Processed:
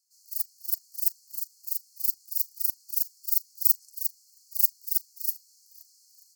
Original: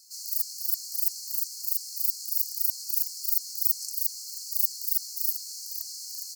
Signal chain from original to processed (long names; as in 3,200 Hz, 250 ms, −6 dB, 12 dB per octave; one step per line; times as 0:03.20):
bass and treble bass +13 dB, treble +9 dB
on a send: flutter between parallel walls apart 6.7 metres, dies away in 0.22 s
on the sum: expander for the loud parts 2.5 to 1, over −28 dBFS
level −4.5 dB